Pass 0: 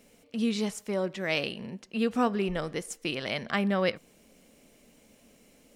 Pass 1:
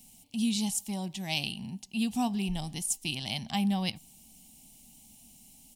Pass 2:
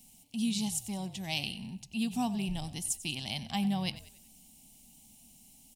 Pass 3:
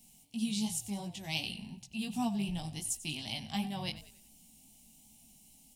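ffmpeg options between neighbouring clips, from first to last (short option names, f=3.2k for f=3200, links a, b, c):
-af "firequalizer=gain_entry='entry(120,0);entry(240,-5);entry(490,-28);entry(790,-1);entry(1300,-26);entry(2900,-2);entry(5500,1);entry(9200,8)':delay=0.05:min_phase=1,volume=4dB"
-filter_complex "[0:a]asplit=5[a][b][c][d][e];[b]adelay=94,afreqshift=-48,volume=-15.5dB[f];[c]adelay=188,afreqshift=-96,volume=-23.2dB[g];[d]adelay=282,afreqshift=-144,volume=-31dB[h];[e]adelay=376,afreqshift=-192,volume=-38.7dB[i];[a][f][g][h][i]amix=inputs=5:normalize=0,volume=-2.5dB"
-af "flanger=delay=17:depth=2.9:speed=2.7,volume=1dB"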